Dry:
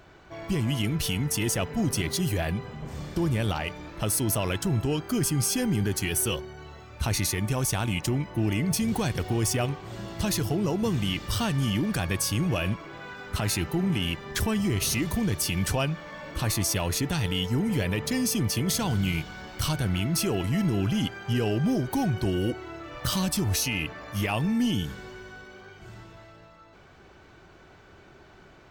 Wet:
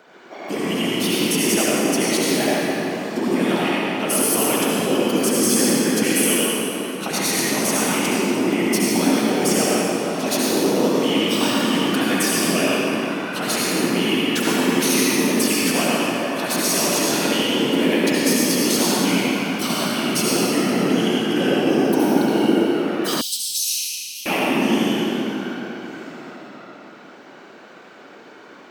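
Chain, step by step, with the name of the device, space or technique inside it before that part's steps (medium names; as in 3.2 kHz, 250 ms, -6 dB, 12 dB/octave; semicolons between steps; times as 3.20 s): whispering ghost (whisper effect; high-pass 230 Hz 24 dB/octave; reverberation RT60 3.5 s, pre-delay 64 ms, DRR -6.5 dB); 23.21–24.26 s: inverse Chebyshev high-pass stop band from 1.8 kHz, stop band 40 dB; trim +3.5 dB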